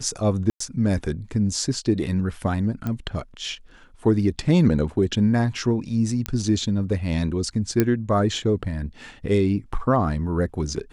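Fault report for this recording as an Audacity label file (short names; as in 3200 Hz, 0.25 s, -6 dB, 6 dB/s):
0.500000	0.600000	gap 0.104 s
2.870000	2.870000	pop -16 dBFS
6.260000	6.260000	pop -9 dBFS
7.800000	7.800000	pop -6 dBFS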